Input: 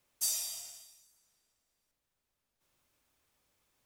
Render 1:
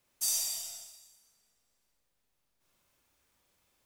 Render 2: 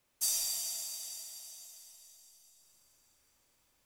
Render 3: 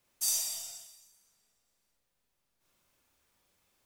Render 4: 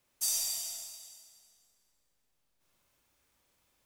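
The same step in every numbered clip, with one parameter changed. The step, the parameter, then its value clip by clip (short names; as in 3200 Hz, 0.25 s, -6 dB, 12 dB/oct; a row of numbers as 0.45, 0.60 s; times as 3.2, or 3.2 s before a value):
Schroeder reverb, RT60: 0.87, 4.3, 0.34, 1.8 s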